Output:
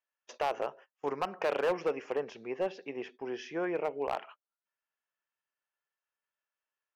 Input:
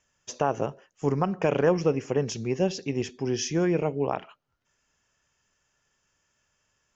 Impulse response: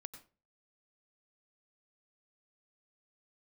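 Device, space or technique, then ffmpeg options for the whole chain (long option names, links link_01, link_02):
walkie-talkie: -filter_complex "[0:a]asettb=1/sr,asplit=3[link_01][link_02][link_03];[link_01]atrim=end=2.144[link_04];[link_02]atrim=start=2.14:end=3.91,asetpts=PTS-STARTPTS,afade=type=in:duration=0.004:curve=qsin,afade=type=out:start_time=1.766:duration=0.004:curve=qsin,aemphasis=mode=reproduction:type=75kf[link_05];[link_03]atrim=start=3.906[link_06];[link_04][link_05]acrossfade=duration=0.004:curve1=hsin:curve2=qsin[link_07];[link_07][link_06]acrossfade=duration=0.004:curve1=qsin:curve2=hsin,highpass=590,lowpass=2700,asoftclip=type=hard:threshold=-24dB,agate=range=-17dB:threshold=-51dB:ratio=16:detection=peak"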